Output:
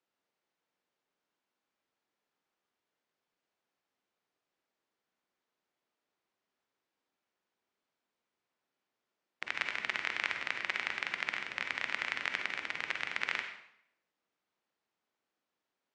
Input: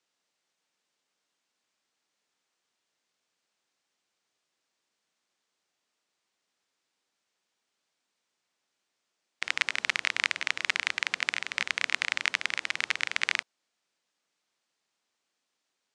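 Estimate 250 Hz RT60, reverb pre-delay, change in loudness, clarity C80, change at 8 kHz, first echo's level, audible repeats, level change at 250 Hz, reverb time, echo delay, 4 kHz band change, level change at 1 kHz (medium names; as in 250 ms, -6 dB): 0.75 s, 40 ms, -6.5 dB, 9.0 dB, -14.5 dB, no echo, no echo, -0.5 dB, 0.70 s, no echo, -9.0 dB, -3.0 dB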